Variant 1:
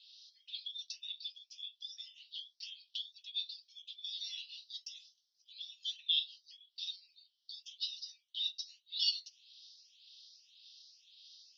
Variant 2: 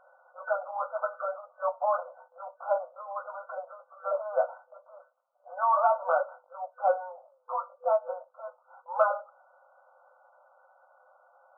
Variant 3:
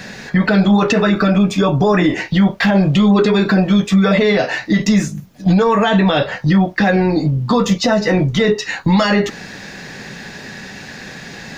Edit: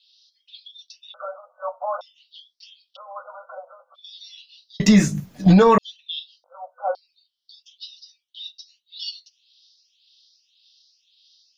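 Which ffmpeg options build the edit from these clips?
-filter_complex "[1:a]asplit=3[a][b][c];[0:a]asplit=5[d][e][f][g][h];[d]atrim=end=1.142[i];[a]atrim=start=1.138:end=2.012[j];[e]atrim=start=2.008:end=2.97[k];[b]atrim=start=2.95:end=3.96[l];[f]atrim=start=3.94:end=4.802[m];[2:a]atrim=start=4.798:end=5.782[n];[g]atrim=start=5.778:end=6.442[o];[c]atrim=start=6.438:end=6.952[p];[h]atrim=start=6.948[q];[i][j]acrossfade=d=0.004:c1=hsin:c2=hsin[r];[r][k]acrossfade=d=0.004:c1=hsin:c2=hsin[s];[s][l]acrossfade=d=0.02:c1=tri:c2=tri[t];[t][m]acrossfade=d=0.02:c1=tri:c2=tri[u];[u][n]acrossfade=d=0.004:c1=hsin:c2=hsin[v];[v][o]acrossfade=d=0.004:c1=hsin:c2=hsin[w];[w][p]acrossfade=d=0.004:c1=hsin:c2=hsin[x];[x][q]acrossfade=d=0.004:c1=hsin:c2=hsin"

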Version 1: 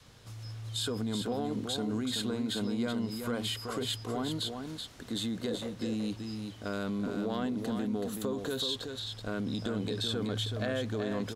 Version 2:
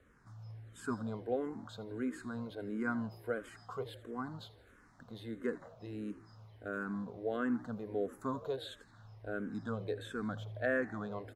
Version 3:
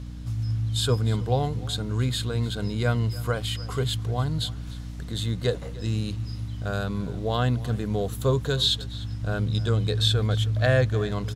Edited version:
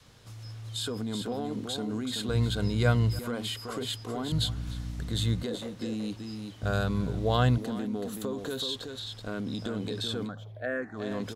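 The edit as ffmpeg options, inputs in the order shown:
-filter_complex "[2:a]asplit=3[a][b][c];[0:a]asplit=5[d][e][f][g][h];[d]atrim=end=2.292[i];[a]atrim=start=2.288:end=3.192[j];[e]atrim=start=3.188:end=4.322[k];[b]atrim=start=4.318:end=5.432[l];[f]atrim=start=5.428:end=6.632[m];[c]atrim=start=6.628:end=7.582[n];[g]atrim=start=7.578:end=10.32[o];[1:a]atrim=start=10.22:end=11.04[p];[h]atrim=start=10.94[q];[i][j]acrossfade=d=0.004:c1=hsin:c2=hsin[r];[r][k]acrossfade=d=0.004:c1=hsin:c2=hsin[s];[s][l]acrossfade=d=0.004:c1=hsin:c2=hsin[t];[t][m]acrossfade=d=0.004:c1=hsin:c2=hsin[u];[u][n]acrossfade=d=0.004:c1=hsin:c2=hsin[v];[v][o]acrossfade=d=0.004:c1=hsin:c2=hsin[w];[w][p]acrossfade=d=0.1:c1=tri:c2=tri[x];[x][q]acrossfade=d=0.1:c1=tri:c2=tri"

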